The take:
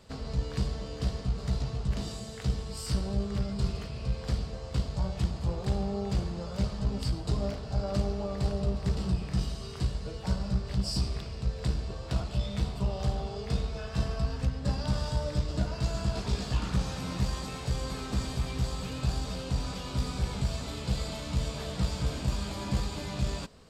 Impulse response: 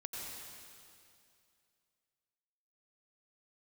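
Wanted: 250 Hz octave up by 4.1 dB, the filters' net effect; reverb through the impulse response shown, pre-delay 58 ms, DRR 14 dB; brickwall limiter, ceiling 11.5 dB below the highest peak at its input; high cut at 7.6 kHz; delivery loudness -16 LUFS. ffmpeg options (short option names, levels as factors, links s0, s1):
-filter_complex "[0:a]lowpass=7600,equalizer=f=250:t=o:g=6,alimiter=level_in=1.12:limit=0.0631:level=0:latency=1,volume=0.891,asplit=2[s0][s1];[1:a]atrim=start_sample=2205,adelay=58[s2];[s1][s2]afir=irnorm=-1:irlink=0,volume=0.211[s3];[s0][s3]amix=inputs=2:normalize=0,volume=8.91"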